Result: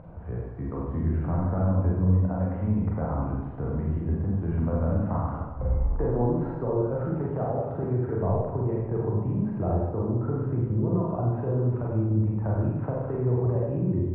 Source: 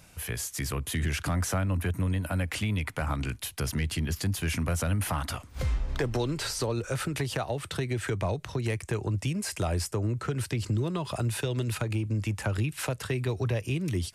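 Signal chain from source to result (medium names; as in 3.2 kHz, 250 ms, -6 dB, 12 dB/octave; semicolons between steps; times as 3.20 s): low-pass 1 kHz 24 dB/octave; upward compressor, threshold -38 dBFS; Schroeder reverb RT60 1.1 s, combs from 33 ms, DRR -4.5 dB; trim -1 dB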